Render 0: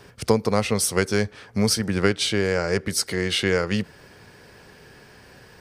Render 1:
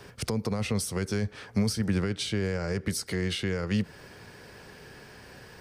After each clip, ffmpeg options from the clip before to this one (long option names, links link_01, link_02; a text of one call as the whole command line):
ffmpeg -i in.wav -filter_complex "[0:a]alimiter=limit=-12.5dB:level=0:latency=1:release=27,acrossover=split=230[link_01][link_02];[link_02]acompressor=threshold=-31dB:ratio=6[link_03];[link_01][link_03]amix=inputs=2:normalize=0" out.wav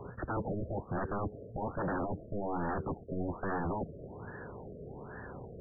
ffmpeg -i in.wav -af "aeval=exprs='0.0237*(abs(mod(val(0)/0.0237+3,4)-2)-1)':channel_layout=same,afftfilt=real='re*lt(b*sr/1024,660*pow(1900/660,0.5+0.5*sin(2*PI*1.2*pts/sr)))':imag='im*lt(b*sr/1024,660*pow(1900/660,0.5+0.5*sin(2*PI*1.2*pts/sr)))':win_size=1024:overlap=0.75,volume=4.5dB" out.wav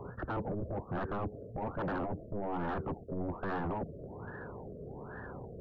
ffmpeg -i in.wav -af "asoftclip=type=tanh:threshold=-30.5dB,volume=1dB" out.wav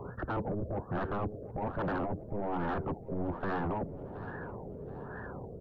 ffmpeg -i in.wav -af "aecho=1:1:725|1450|2175:0.168|0.0638|0.0242,volume=2dB" out.wav